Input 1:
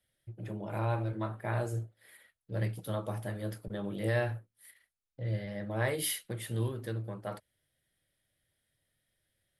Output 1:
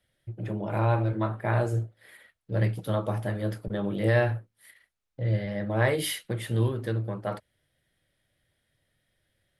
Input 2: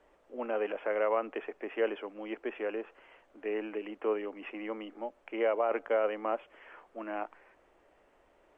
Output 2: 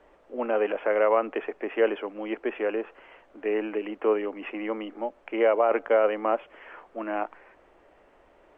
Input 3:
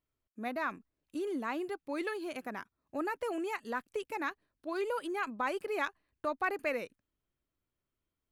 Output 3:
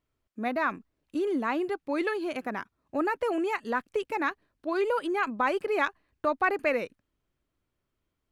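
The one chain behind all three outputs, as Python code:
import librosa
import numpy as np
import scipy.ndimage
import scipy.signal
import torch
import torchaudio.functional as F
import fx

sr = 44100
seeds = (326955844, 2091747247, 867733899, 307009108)

y = fx.lowpass(x, sr, hz=3900.0, slope=6)
y = y * 10.0 ** (7.5 / 20.0)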